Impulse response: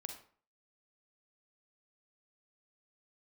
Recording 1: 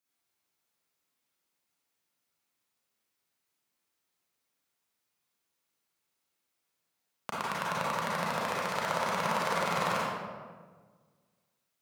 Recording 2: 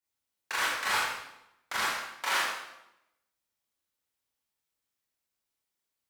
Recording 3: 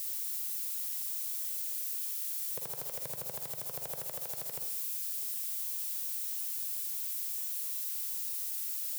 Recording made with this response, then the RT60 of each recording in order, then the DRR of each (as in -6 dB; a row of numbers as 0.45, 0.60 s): 3; 1.5, 0.85, 0.45 s; -7.5, -8.5, 4.0 dB